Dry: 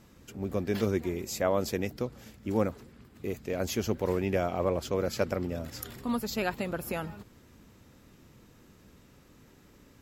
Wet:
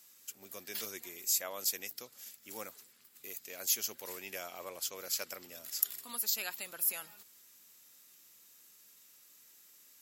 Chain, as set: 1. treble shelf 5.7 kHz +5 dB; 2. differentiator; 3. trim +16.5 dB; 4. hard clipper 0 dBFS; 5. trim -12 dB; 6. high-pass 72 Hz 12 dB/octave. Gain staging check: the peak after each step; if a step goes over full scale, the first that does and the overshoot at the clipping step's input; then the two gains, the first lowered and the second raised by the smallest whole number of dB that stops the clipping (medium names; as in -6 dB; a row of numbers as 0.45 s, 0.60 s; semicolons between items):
-12.5 dBFS, -11.0 dBFS, +5.5 dBFS, 0.0 dBFS, -12.0 dBFS, -12.0 dBFS; step 3, 5.5 dB; step 3 +10.5 dB, step 5 -6 dB